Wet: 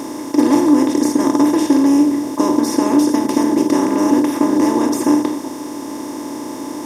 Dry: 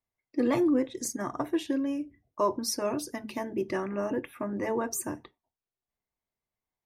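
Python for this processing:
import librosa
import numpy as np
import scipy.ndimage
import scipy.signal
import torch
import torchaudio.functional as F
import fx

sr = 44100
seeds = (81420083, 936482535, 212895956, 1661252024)

y = fx.bin_compress(x, sr, power=0.2)
y = fx.small_body(y, sr, hz=(290.0, 860.0, 3600.0), ring_ms=65, db=14)
y = y * 10.0 ** (-1.0 / 20.0)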